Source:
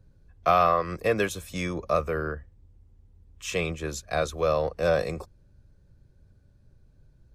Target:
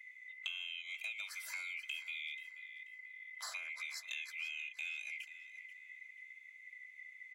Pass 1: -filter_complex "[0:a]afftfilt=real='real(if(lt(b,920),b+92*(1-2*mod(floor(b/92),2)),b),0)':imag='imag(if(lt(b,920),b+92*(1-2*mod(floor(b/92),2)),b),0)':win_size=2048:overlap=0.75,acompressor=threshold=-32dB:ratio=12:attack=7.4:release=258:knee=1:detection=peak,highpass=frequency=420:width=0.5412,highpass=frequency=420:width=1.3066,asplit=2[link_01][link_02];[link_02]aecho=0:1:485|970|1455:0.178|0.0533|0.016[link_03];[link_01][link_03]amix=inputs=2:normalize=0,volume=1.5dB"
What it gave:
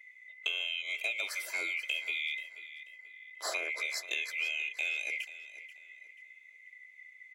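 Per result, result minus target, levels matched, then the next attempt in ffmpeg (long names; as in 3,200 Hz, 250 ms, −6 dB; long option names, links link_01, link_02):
500 Hz band +14.0 dB; downward compressor: peak gain reduction −8.5 dB
-filter_complex "[0:a]afftfilt=real='real(if(lt(b,920),b+92*(1-2*mod(floor(b/92),2)),b),0)':imag='imag(if(lt(b,920),b+92*(1-2*mod(floor(b/92),2)),b),0)':win_size=2048:overlap=0.75,acompressor=threshold=-32dB:ratio=12:attack=7.4:release=258:knee=1:detection=peak,highpass=frequency=950:width=0.5412,highpass=frequency=950:width=1.3066,asplit=2[link_01][link_02];[link_02]aecho=0:1:485|970|1455:0.178|0.0533|0.016[link_03];[link_01][link_03]amix=inputs=2:normalize=0,volume=1.5dB"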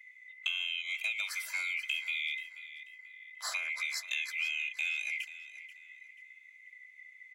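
downward compressor: peak gain reduction −8.5 dB
-filter_complex "[0:a]afftfilt=real='real(if(lt(b,920),b+92*(1-2*mod(floor(b/92),2)),b),0)':imag='imag(if(lt(b,920),b+92*(1-2*mod(floor(b/92),2)),b),0)':win_size=2048:overlap=0.75,acompressor=threshold=-41.5dB:ratio=12:attack=7.4:release=258:knee=1:detection=peak,highpass=frequency=950:width=0.5412,highpass=frequency=950:width=1.3066,asplit=2[link_01][link_02];[link_02]aecho=0:1:485|970|1455:0.178|0.0533|0.016[link_03];[link_01][link_03]amix=inputs=2:normalize=0,volume=1.5dB"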